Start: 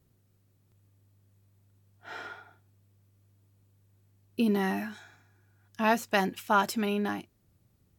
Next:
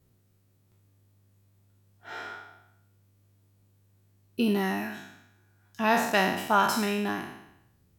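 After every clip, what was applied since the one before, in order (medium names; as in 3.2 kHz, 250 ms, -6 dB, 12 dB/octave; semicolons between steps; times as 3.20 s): spectral sustain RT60 0.82 s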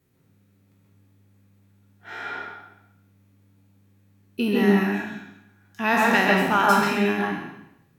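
reverberation RT60 0.45 s, pre-delay 129 ms, DRR -1 dB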